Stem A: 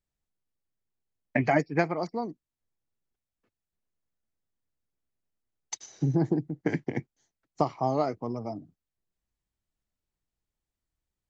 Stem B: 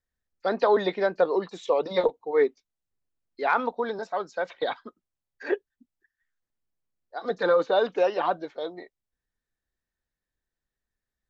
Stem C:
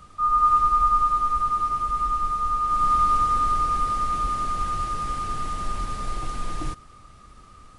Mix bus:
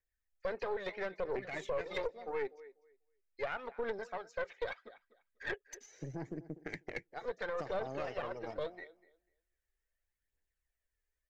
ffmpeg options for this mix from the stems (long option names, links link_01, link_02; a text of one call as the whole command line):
ffmpeg -i stem1.wav -i stem2.wav -filter_complex "[0:a]acontrast=78,volume=-8.5dB,afade=type=in:start_time=5.75:duration=0.24:silence=0.334965,asplit=2[link_01][link_02];[link_02]volume=-21.5dB[link_03];[1:a]alimiter=limit=-19.5dB:level=0:latency=1:release=167,volume=-3dB,asplit=2[link_04][link_05];[link_05]volume=-19dB[link_06];[link_01][link_04]amix=inputs=2:normalize=0,aphaser=in_gain=1:out_gain=1:delay=2.5:decay=0.47:speed=0.77:type=triangular,alimiter=limit=-23dB:level=0:latency=1:release=242,volume=0dB[link_07];[link_03][link_06]amix=inputs=2:normalize=0,aecho=0:1:246|492|738:1|0.18|0.0324[link_08];[link_07][link_08]amix=inputs=2:normalize=0,equalizer=frequency=125:width_type=o:width=1:gain=-10,equalizer=frequency=250:width_type=o:width=1:gain=-9,equalizer=frequency=500:width_type=o:width=1:gain=3,equalizer=frequency=1000:width_type=o:width=1:gain=-8,equalizer=frequency=2000:width_type=o:width=1:gain=7,equalizer=frequency=4000:width_type=o:width=1:gain=-7,aeval=exprs='(tanh(25.1*val(0)+0.65)-tanh(0.65))/25.1':channel_layout=same" out.wav